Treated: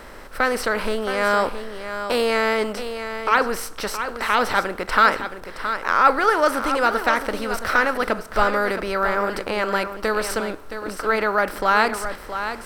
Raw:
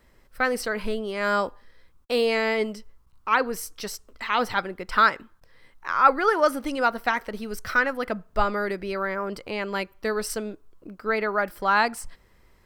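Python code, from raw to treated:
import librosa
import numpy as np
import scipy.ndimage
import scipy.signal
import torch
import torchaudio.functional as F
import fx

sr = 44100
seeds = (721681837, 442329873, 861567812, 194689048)

y = fx.bin_compress(x, sr, power=0.6)
y = y + 10.0 ** (-9.5 / 20.0) * np.pad(y, (int(670 * sr / 1000.0), 0))[:len(y)]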